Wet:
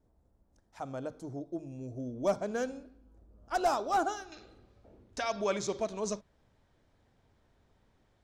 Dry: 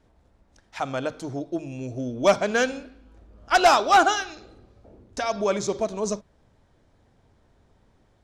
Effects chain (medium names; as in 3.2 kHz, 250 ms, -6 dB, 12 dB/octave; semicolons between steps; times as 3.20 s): peaking EQ 2.7 kHz -13.5 dB 2.3 oct, from 4.32 s +3.5 dB; trim -8 dB